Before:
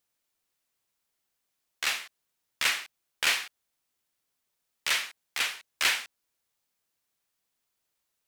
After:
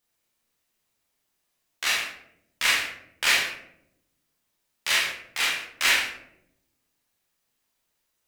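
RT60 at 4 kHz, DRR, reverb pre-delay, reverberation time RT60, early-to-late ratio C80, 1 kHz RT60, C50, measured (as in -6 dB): 0.40 s, -4.0 dB, 23 ms, 0.80 s, 7.5 dB, 0.65 s, 3.5 dB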